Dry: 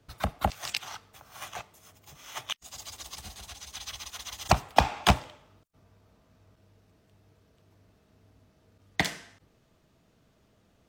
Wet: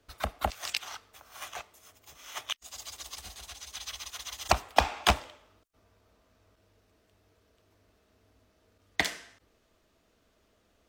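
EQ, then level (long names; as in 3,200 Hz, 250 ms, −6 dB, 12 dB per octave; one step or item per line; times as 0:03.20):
parametric band 140 Hz −14 dB 1.2 octaves
parametric band 840 Hz −3 dB 0.38 octaves
0.0 dB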